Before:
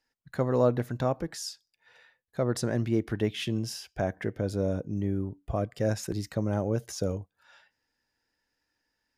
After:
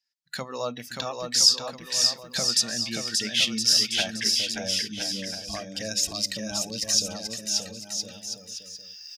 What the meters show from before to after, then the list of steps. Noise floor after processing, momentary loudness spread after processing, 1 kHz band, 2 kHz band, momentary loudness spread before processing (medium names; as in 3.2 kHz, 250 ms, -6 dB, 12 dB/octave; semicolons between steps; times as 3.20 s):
-47 dBFS, 15 LU, -0.5 dB, +9.0 dB, 9 LU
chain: recorder AGC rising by 13 dB/s; pre-emphasis filter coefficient 0.9; hum notches 50/100/150/200/250 Hz; spectral noise reduction 15 dB; FFT filter 110 Hz 0 dB, 220 Hz +10 dB, 350 Hz -2 dB, 530 Hz +5 dB, 5 kHz +15 dB, 11 kHz -2 dB; bouncing-ball echo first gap 580 ms, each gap 0.75×, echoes 5; trim +6 dB